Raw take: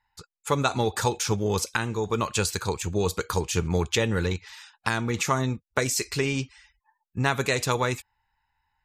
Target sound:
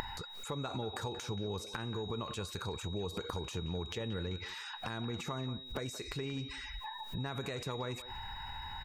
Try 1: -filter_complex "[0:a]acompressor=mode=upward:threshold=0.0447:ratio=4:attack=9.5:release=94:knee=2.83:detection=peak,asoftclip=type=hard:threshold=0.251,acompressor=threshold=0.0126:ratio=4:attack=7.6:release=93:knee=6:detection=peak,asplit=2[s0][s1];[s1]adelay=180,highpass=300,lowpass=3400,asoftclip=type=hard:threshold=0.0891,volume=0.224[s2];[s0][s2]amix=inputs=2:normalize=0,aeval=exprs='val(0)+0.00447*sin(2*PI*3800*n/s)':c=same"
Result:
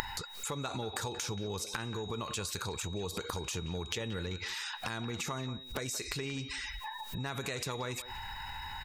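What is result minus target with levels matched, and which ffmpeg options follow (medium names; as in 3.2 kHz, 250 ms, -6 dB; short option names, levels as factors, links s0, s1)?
2 kHz band +3.0 dB
-filter_complex "[0:a]acompressor=mode=upward:threshold=0.0447:ratio=4:attack=9.5:release=94:knee=2.83:detection=peak,asoftclip=type=hard:threshold=0.251,acompressor=threshold=0.0126:ratio=4:attack=7.6:release=93:knee=6:detection=peak,highshelf=f=2100:g=-11.5,asplit=2[s0][s1];[s1]adelay=180,highpass=300,lowpass=3400,asoftclip=type=hard:threshold=0.0891,volume=0.224[s2];[s0][s2]amix=inputs=2:normalize=0,aeval=exprs='val(0)+0.00447*sin(2*PI*3800*n/s)':c=same"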